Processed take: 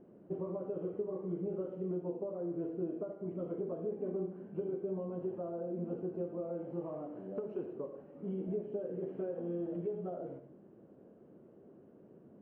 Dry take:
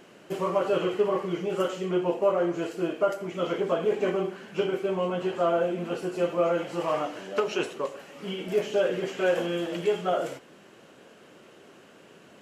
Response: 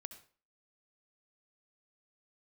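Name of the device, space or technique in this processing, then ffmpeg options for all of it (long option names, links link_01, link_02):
television next door: -filter_complex "[0:a]acompressor=threshold=-29dB:ratio=6,lowpass=410[link_01];[1:a]atrim=start_sample=2205[link_02];[link_01][link_02]afir=irnorm=-1:irlink=0,volume=3dB"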